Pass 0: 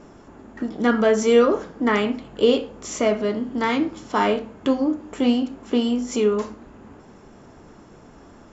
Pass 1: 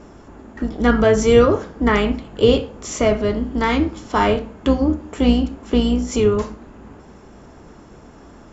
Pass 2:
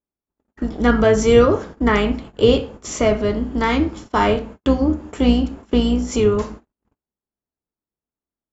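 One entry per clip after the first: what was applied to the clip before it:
sub-octave generator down 2 octaves, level −4 dB; level +3 dB
noise gate −34 dBFS, range −51 dB

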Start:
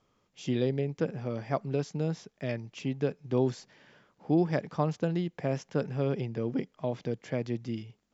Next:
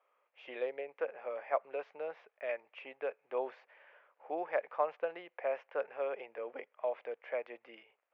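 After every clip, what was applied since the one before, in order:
Chebyshev band-pass filter 530–2,500 Hz, order 3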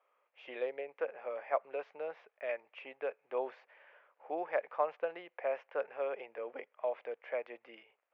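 no processing that can be heard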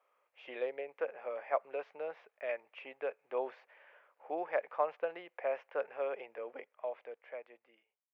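fade-out on the ending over 2.01 s

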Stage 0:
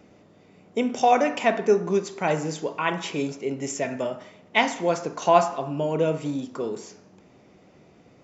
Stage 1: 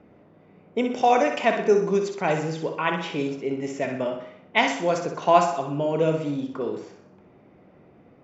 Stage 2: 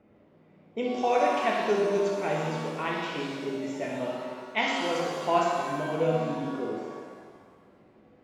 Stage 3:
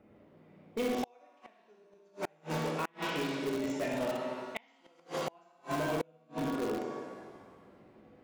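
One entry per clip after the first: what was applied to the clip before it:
low-pass that shuts in the quiet parts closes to 1,900 Hz, open at −15.5 dBFS; flutter between parallel walls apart 10.7 metres, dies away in 0.52 s
reverb with rising layers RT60 1.6 s, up +7 semitones, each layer −8 dB, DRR −1 dB; level −8.5 dB
gate with flip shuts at −19 dBFS, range −36 dB; in parallel at −9.5 dB: wrap-around overflow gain 26 dB; on the sum: level −3 dB

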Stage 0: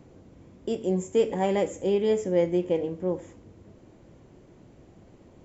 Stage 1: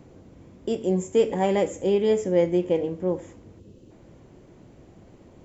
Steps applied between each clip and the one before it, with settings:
gain on a spectral selection 0:03.59–0:03.91, 570–2,500 Hz −11 dB
level +2.5 dB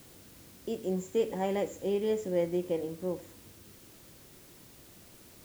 bit-depth reduction 8 bits, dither triangular
level −8.5 dB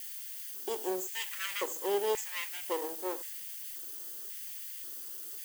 lower of the sound and its delayed copy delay 0.63 ms
RIAA equalisation recording
auto-filter high-pass square 0.93 Hz 390–2,100 Hz
level −1 dB

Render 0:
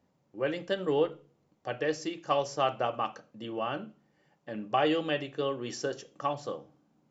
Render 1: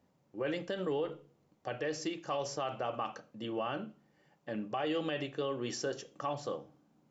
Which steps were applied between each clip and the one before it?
brickwall limiter −26 dBFS, peak gain reduction 11 dB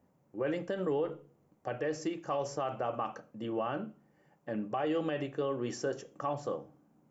parametric band 3,900 Hz −11 dB 1.4 octaves
level +2.5 dB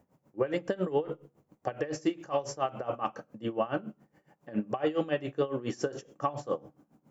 tremolo with a sine in dB 7.2 Hz, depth 18 dB
level +7.5 dB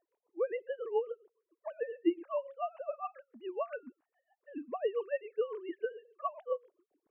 three sine waves on the formant tracks
level −4.5 dB

